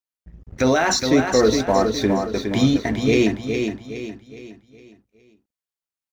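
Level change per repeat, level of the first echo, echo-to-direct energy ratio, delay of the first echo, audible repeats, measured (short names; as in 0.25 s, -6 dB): -8.0 dB, -6.0 dB, -5.0 dB, 0.414 s, 4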